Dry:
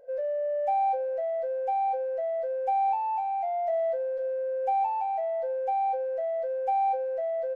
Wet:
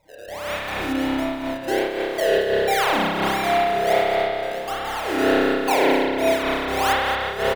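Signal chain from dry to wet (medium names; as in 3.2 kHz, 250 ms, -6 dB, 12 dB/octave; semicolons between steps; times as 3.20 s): reverb removal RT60 0.78 s; LFO high-pass sine 1.7 Hz 850–1700 Hz; comb 3.2 ms, depth 33%; in parallel at -9.5 dB: Schmitt trigger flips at -36 dBFS; on the sum: decimation with a swept rate 28×, swing 100% 1.4 Hz; on a send: delay 226 ms -12.5 dB; on the sum: spring tank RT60 3.6 s, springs 30 ms, chirp 35 ms, DRR -9.5 dB; random flutter of the level, depth 65%; trim +5 dB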